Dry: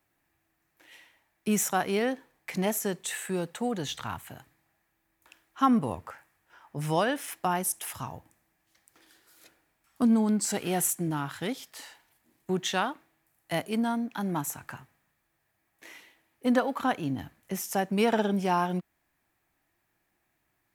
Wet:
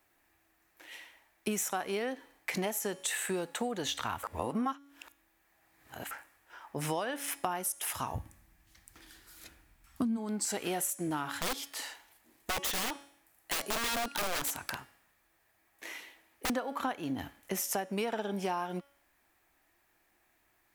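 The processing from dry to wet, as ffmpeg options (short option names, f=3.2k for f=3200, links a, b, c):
-filter_complex "[0:a]asplit=3[a][b][c];[a]afade=t=out:st=8.14:d=0.02[d];[b]asubboost=boost=8.5:cutoff=160,afade=t=in:st=8.14:d=0.02,afade=t=out:st=10.16:d=0.02[e];[c]afade=t=in:st=10.16:d=0.02[f];[d][e][f]amix=inputs=3:normalize=0,asettb=1/sr,asplit=3[g][h][i];[g]atrim=end=11.314[j];[h]atrim=start=11.31:end=16.5,asetpts=PTS-STARTPTS,afade=t=in:d=0.004:c=qsin,afade=t=out:st=5.186:d=0.004:c=qsin,aeval=exprs='(mod(25.1*val(0)+1,2)-1)/25.1':c=same[k];[i]atrim=start=16.496[l];[j][k]acrossfade=d=0.004:c1=hsin:c2=qsin[m];[m][l]acrossfade=d=0.004:c1=qsin:c2=hsin,asplit=3[n][o][p];[n]atrim=end=4.232[q];[o]atrim=start=4.228:end=6.112,asetpts=PTS-STARTPTS,areverse[r];[p]atrim=start=6.108[s];[q][r]acrossfade=d=0.004:c1=hsin:c2=hsin[t];[t][s]acrossfade=d=0.004:c1=hsin:c2=hsin,equalizer=f=140:w=1.1:g=-10.5,bandreject=f=281.1:t=h:w=4,bandreject=f=562.2:t=h:w=4,bandreject=f=843.3:t=h:w=4,bandreject=f=1.1244k:t=h:w=4,bandreject=f=1.4055k:t=h:w=4,bandreject=f=1.6866k:t=h:w=4,bandreject=f=1.9677k:t=h:w=4,bandreject=f=2.2488k:t=h:w=4,bandreject=f=2.5299k:t=h:w=4,bandreject=f=2.811k:t=h:w=4,bandreject=f=3.0921k:t=h:w=4,bandreject=f=3.3732k:t=h:w=4,bandreject=f=3.6543k:t=h:w=4,bandreject=f=3.9354k:t=h:w=4,bandreject=f=4.2165k:t=h:w=4,bandreject=f=4.4976k:t=h:w=4,bandreject=f=4.7787k:t=h:w=4,bandreject=f=5.0598k:t=h:w=4,bandreject=f=5.3409k:t=h:w=4,bandreject=f=5.622k:t=h:w=4,bandreject=f=5.9031k:t=h:w=4,bandreject=f=6.1842k:t=h:w=4,bandreject=f=6.4653k:t=h:w=4,bandreject=f=6.7464k:t=h:w=4,bandreject=f=7.0275k:t=h:w=4,bandreject=f=7.3086k:t=h:w=4,bandreject=f=7.5897k:t=h:w=4,bandreject=f=7.8708k:t=h:w=4,bandreject=f=8.1519k:t=h:w=4,bandreject=f=8.433k:t=h:w=4,bandreject=f=8.7141k:t=h:w=4,bandreject=f=8.9952k:t=h:w=4,bandreject=f=9.2763k:t=h:w=4,bandreject=f=9.5574k:t=h:w=4,bandreject=f=9.8385k:t=h:w=4,bandreject=f=10.1196k:t=h:w=4,bandreject=f=10.4007k:t=h:w=4,bandreject=f=10.6818k:t=h:w=4,bandreject=f=10.9629k:t=h:w=4,bandreject=f=11.244k:t=h:w=4,acompressor=threshold=-35dB:ratio=10,volume=5dB"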